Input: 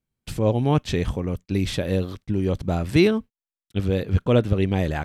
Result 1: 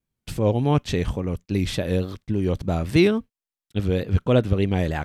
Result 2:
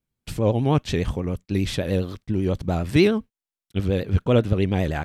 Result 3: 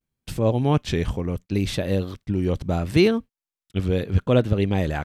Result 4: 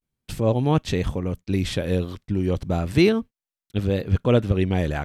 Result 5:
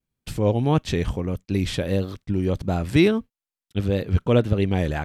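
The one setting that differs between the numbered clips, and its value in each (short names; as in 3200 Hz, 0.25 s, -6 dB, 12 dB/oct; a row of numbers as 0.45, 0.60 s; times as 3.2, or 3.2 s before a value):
vibrato, rate: 3.5, 10, 0.72, 0.35, 1.6 Hz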